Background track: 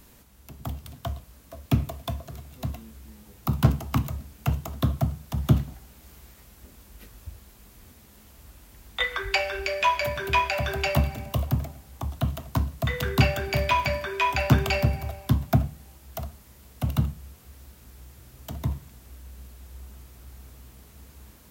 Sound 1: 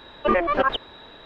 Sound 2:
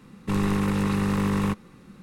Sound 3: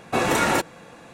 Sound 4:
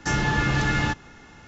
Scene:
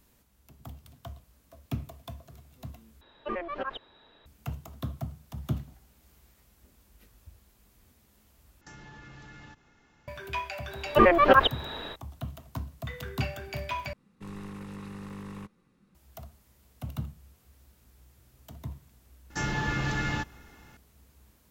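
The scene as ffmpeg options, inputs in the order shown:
-filter_complex "[1:a]asplit=2[s0][s1];[4:a]asplit=2[s2][s3];[0:a]volume=0.282[s4];[s2]acompressor=threshold=0.0316:ratio=6:attack=3.2:release=140:knee=1:detection=peak[s5];[s1]dynaudnorm=f=110:g=3:m=3.35[s6];[s4]asplit=4[s7][s8][s9][s10];[s7]atrim=end=3.014[s11];[s0]atrim=end=1.25,asetpts=PTS-STARTPTS,volume=0.2[s12];[s8]atrim=start=4.256:end=8.614[s13];[s5]atrim=end=1.47,asetpts=PTS-STARTPTS,volume=0.168[s14];[s9]atrim=start=10.076:end=13.934[s15];[2:a]atrim=end=2.02,asetpts=PTS-STARTPTS,volume=0.133[s16];[s10]atrim=start=15.946[s17];[s6]atrim=end=1.25,asetpts=PTS-STARTPTS,volume=0.668,afade=t=in:d=0.004:c=hsin,afade=t=out:st=1.246:d=0.004:c=hsin,adelay=10710[s18];[s3]atrim=end=1.47,asetpts=PTS-STARTPTS,volume=0.447,afade=t=in:d=0.004:c=hsin,afade=t=out:st=1.466:d=0.004:c=hsin,adelay=19300[s19];[s11][s12]acrossfade=d=0.004:c1=hsin:c2=hsin[s20];[s20][s13]acrossfade=d=0.004:c1=hsin:c2=hsin[s21];[s21][s14]acrossfade=d=0.004:c1=hsin:c2=hsin[s22];[s22][s15]acrossfade=d=0.004:c1=hsin:c2=hsin[s23];[s23][s16]acrossfade=d=0.004:c1=hsin:c2=hsin[s24];[s24][s17]acrossfade=d=0.004:c1=hsin:c2=hsin[s25];[s25][s18][s19]amix=inputs=3:normalize=0"

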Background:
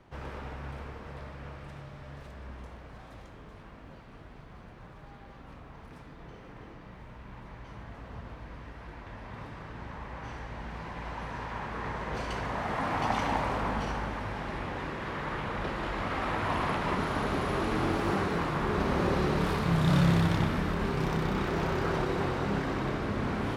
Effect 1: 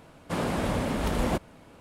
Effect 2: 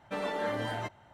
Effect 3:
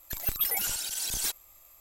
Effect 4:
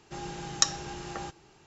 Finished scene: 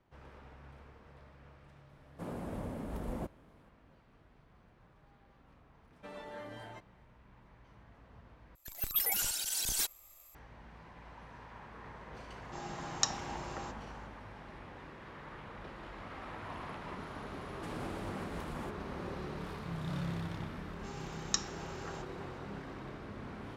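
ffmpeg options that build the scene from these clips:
-filter_complex "[1:a]asplit=2[s0][s1];[4:a]asplit=2[s2][s3];[0:a]volume=0.2[s4];[s0]equalizer=f=4100:w=0.37:g=-12[s5];[3:a]dynaudnorm=f=200:g=3:m=3.76[s6];[s1]alimiter=level_in=1.26:limit=0.0631:level=0:latency=1:release=330,volume=0.794[s7];[s3]highpass=900[s8];[s4]asplit=2[s9][s10];[s9]atrim=end=8.554[s11];[s6]atrim=end=1.8,asetpts=PTS-STARTPTS,volume=0.211[s12];[s10]atrim=start=10.346[s13];[s5]atrim=end=1.8,asetpts=PTS-STARTPTS,volume=0.266,afade=t=in:d=0.004:c=hsin,afade=t=out:st=1.796:d=0.004:c=hsin,adelay=1890[s14];[2:a]atrim=end=1.13,asetpts=PTS-STARTPTS,volume=0.211,afade=t=in:d=0.004:c=hsin,afade=t=out:st=1.126:d=0.004:c=hsin,adelay=5920[s15];[s2]atrim=end=1.66,asetpts=PTS-STARTPTS,volume=0.447,afade=t=in:d=0.004:c=hsin,afade=t=out:st=1.656:d=0.004:c=hsin,adelay=12410[s16];[s7]atrim=end=1.8,asetpts=PTS-STARTPTS,volume=0.335,afade=t=in:d=0.004:c=hsin,afade=t=out:st=1.796:d=0.004:c=hsin,adelay=17330[s17];[s8]atrim=end=1.66,asetpts=PTS-STARTPTS,volume=0.376,afade=t=in:d=0.004:c=hsin,afade=t=out:st=1.656:d=0.004:c=hsin,adelay=20720[s18];[s11][s12]acrossfade=d=0.004:c1=hsin:c2=hsin[s19];[s19][s13]acrossfade=d=0.004:c1=hsin:c2=hsin[s20];[s20][s14][s15][s16][s17][s18]amix=inputs=6:normalize=0"

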